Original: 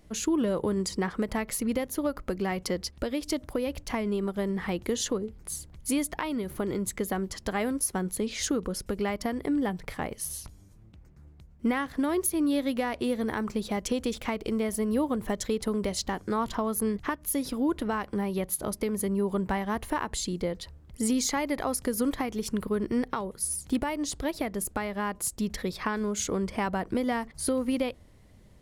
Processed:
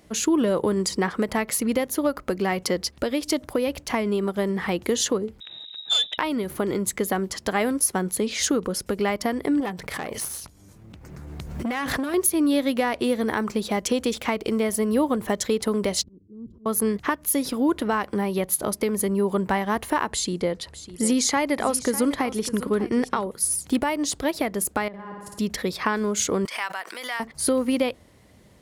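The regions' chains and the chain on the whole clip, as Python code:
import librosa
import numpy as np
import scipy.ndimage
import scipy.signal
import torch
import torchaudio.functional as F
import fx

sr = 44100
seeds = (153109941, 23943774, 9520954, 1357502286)

y = fx.chain(x, sr, fx.dynamic_eq(hz=2000.0, q=2.2, threshold_db=-53.0, ratio=4.0, max_db=-6),
    fx.freq_invert(carrier_hz=3800),
    fx.transformer_sat(knee_hz=2300.0), at=(5.4, 6.18))
y = fx.chain(y, sr, fx.tube_stage(drive_db=27.0, bias=0.7),
    fx.pre_swell(db_per_s=22.0), at=(9.6, 12.14))
y = fx.chain(y, sr, fx.cheby2_lowpass(hz=700.0, order=4, stop_db=40),
    fx.auto_swell(attack_ms=379.0), at=(16.03, 16.66))
y = fx.chain(y, sr, fx.cheby1_lowpass(hz=11000.0, order=3),
    fx.echo_single(ms=601, db=-14.5), at=(20.12, 23.27))
y = fx.chain(y, sr, fx.lowpass(hz=1100.0, slope=6),
    fx.level_steps(step_db=15),
    fx.room_flutter(wall_m=9.6, rt60_s=1.4), at=(24.88, 25.39))
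y = fx.chain(y, sr, fx.highpass(hz=1400.0, slope=12),
    fx.pre_swell(db_per_s=76.0), at=(26.45, 27.2))
y = scipy.signal.sosfilt(scipy.signal.butter(2, 50.0, 'highpass', fs=sr, output='sos'), y)
y = fx.low_shelf(y, sr, hz=150.0, db=-9.0)
y = y * 10.0 ** (7.0 / 20.0)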